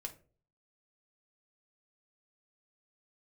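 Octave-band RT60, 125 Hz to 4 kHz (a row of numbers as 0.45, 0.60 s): 0.65, 0.50, 0.50, 0.30, 0.30, 0.20 s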